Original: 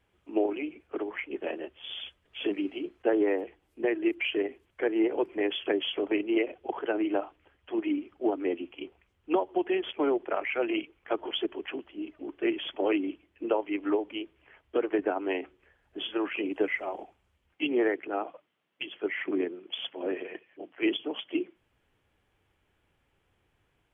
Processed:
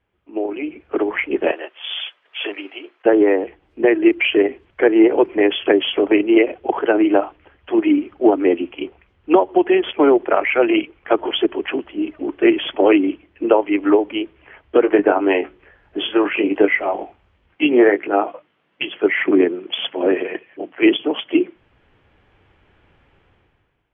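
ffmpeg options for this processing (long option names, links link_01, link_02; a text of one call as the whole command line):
ffmpeg -i in.wav -filter_complex "[0:a]asettb=1/sr,asplit=3[link_01][link_02][link_03];[link_01]atrim=end=1.514[link_04];[link_02]atrim=start=1.51:end=3.06,asetpts=PTS-STARTPTS,afade=type=in:duration=0.004:curve=qsin,afade=type=out:start_time=1.546:duration=0.004:curve=qsin,highpass=780[link_05];[link_03]atrim=start=3.056[link_06];[link_04][link_05]acrossfade=duration=0.004:curve1=hsin:curve2=qsin[link_07];[link_07][link_06]acrossfade=duration=0.004:curve1=qsin:curve2=hsin,asettb=1/sr,asplit=3[link_08][link_09][link_10];[link_08]atrim=end=14.824[link_11];[link_09]atrim=start=14.82:end=18.88,asetpts=PTS-STARTPTS,afade=type=in:duration=0.004:curve=qsin,afade=type=out:start_time=4.056:duration=0.004:curve=qsin,asplit=2[link_12][link_13];[link_13]adelay=20,volume=-8dB[link_14];[link_12][link_14]amix=inputs=2:normalize=0,atrim=end_sample=179046[link_15];[link_10]atrim=start=18.876[link_16];[link_11][link_15]acrossfade=duration=0.004:curve1=hsin:curve2=qsin[link_17];[link_17][link_16]acrossfade=duration=0.004:curve1=qsin:curve2=hsin,lowpass=3000,dynaudnorm=framelen=120:gausssize=11:maxgain=16.5dB" out.wav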